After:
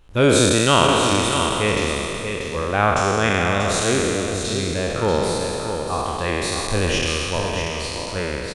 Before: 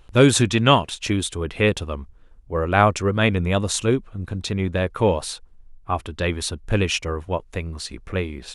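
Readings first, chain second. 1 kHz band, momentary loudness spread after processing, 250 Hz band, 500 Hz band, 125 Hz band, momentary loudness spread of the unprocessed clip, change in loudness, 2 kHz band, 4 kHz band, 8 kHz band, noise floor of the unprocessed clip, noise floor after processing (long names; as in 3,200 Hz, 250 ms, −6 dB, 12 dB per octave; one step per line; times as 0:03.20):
+3.0 dB, 11 LU, +0.5 dB, +2.5 dB, −1.5 dB, 14 LU, +2.0 dB, +3.5 dB, +4.0 dB, +5.0 dB, −50 dBFS, −29 dBFS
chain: peak hold with a decay on every bin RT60 2.95 s
on a send: single-tap delay 637 ms −7 dB
on the sum: level −4.5 dB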